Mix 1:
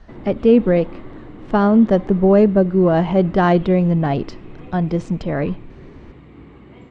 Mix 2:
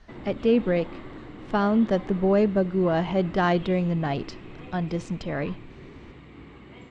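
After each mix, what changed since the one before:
speech -4.5 dB; master: add tilt shelf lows -4.5 dB, about 1500 Hz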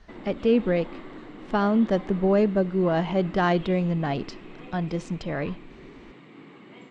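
background: add HPF 160 Hz 24 dB/oct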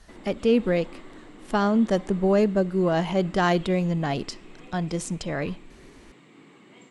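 background -5.0 dB; master: remove air absorption 160 m

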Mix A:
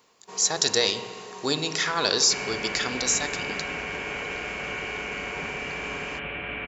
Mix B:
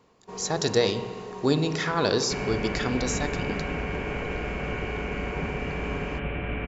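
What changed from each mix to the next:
master: add tilt -3.5 dB/oct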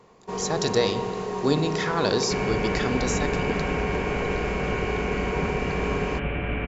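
first sound +8.5 dB; second sound +3.0 dB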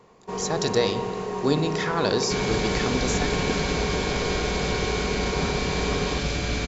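second sound: remove Chebyshev low-pass 2900 Hz, order 6

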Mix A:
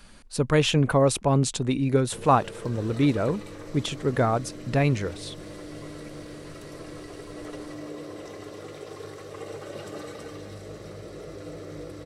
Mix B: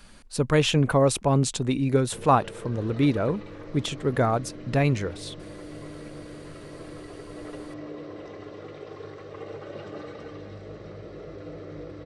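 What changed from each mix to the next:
background: add air absorption 190 m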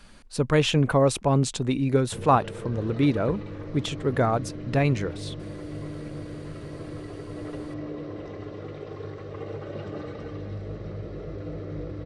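background: add low shelf 210 Hz +11 dB; master: add high shelf 9100 Hz -7 dB

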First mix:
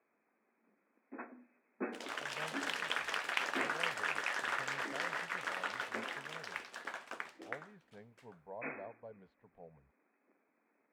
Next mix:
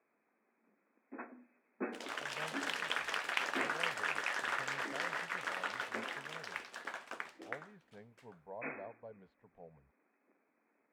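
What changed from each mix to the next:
none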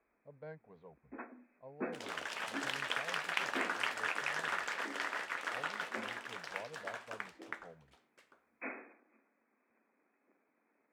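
speech: entry -1.95 s

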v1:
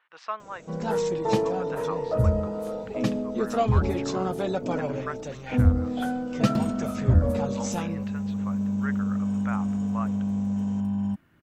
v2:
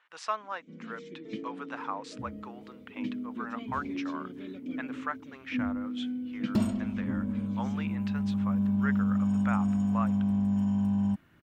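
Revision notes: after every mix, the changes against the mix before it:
speech: remove air absorption 150 m; first sound: add vowel filter i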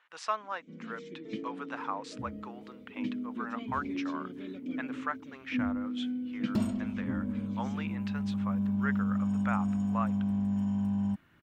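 second sound -3.0 dB

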